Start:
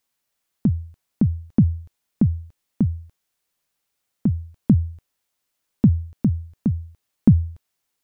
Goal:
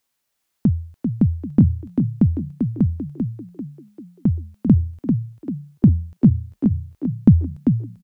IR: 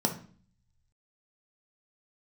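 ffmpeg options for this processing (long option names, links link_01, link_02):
-filter_complex "[0:a]asplit=6[link_01][link_02][link_03][link_04][link_05][link_06];[link_02]adelay=392,afreqshift=31,volume=-6dB[link_07];[link_03]adelay=784,afreqshift=62,volume=-14dB[link_08];[link_04]adelay=1176,afreqshift=93,volume=-21.9dB[link_09];[link_05]adelay=1568,afreqshift=124,volume=-29.9dB[link_10];[link_06]adelay=1960,afreqshift=155,volume=-37.8dB[link_11];[link_01][link_07][link_08][link_09][link_10][link_11]amix=inputs=6:normalize=0,volume=2dB"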